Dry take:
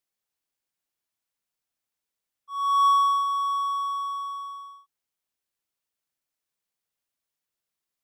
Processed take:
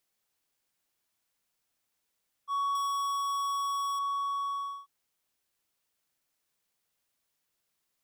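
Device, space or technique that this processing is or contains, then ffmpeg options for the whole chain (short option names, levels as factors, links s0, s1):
serial compression, leveller first: -filter_complex "[0:a]asettb=1/sr,asplit=3[s0][s1][s2];[s0]atrim=end=2.754[s3];[s1]atrim=start=2.75:end=3.99,asetpts=PTS-STARTPTS,afade=t=in:d=0.004:c=qsin,afade=t=out:st=1.236:d=0.004:c=qsin,bass=f=250:g=7,treble=f=4000:g=14[s4];[s2]atrim=start=3.986[s5];[s3][s4]acrossfade=d=0.004:c1=hsin:c2=qsin[s6];[s6][s5]acrossfade=d=0.004:c1=qsin:c2=hsin,acompressor=threshold=0.0794:ratio=6,acompressor=threshold=0.0158:ratio=5,volume=2"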